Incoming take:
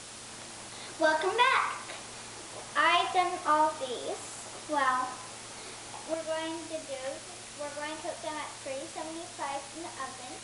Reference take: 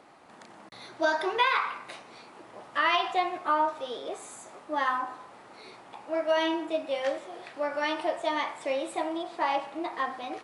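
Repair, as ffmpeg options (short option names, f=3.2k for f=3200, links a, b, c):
-af "bandreject=f=112.8:t=h:w=4,bandreject=f=225.6:t=h:w=4,bandreject=f=338.4:t=h:w=4,bandreject=f=451.2:t=h:w=4,bandreject=f=564:t=h:w=4,afwtdn=0.0071,asetnsamples=n=441:p=0,asendcmd='6.14 volume volume 8.5dB',volume=0dB"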